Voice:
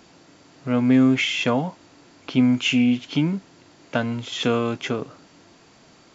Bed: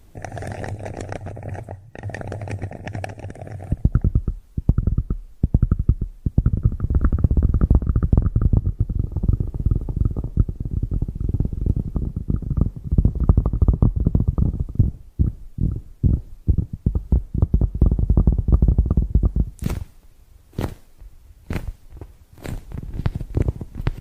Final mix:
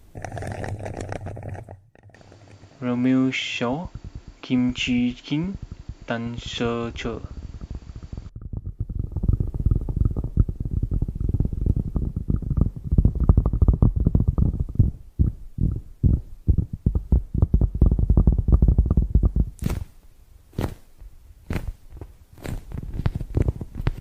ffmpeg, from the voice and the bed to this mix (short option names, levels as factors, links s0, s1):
-filter_complex "[0:a]adelay=2150,volume=0.668[s0];[1:a]volume=7.08,afade=t=out:st=1.35:d=0.67:silence=0.125893,afade=t=in:st=8.46:d=0.96:silence=0.125893[s1];[s0][s1]amix=inputs=2:normalize=0"